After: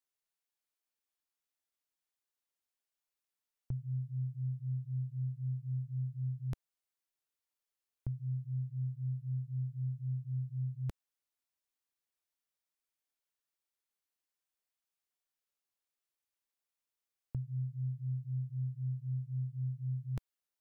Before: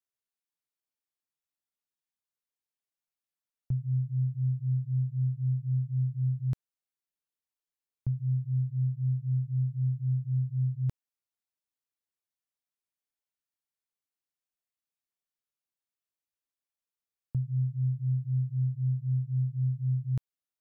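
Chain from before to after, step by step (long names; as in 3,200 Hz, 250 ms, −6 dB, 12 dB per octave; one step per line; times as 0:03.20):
parametric band 140 Hz −9.5 dB 1.4 octaves
level +1 dB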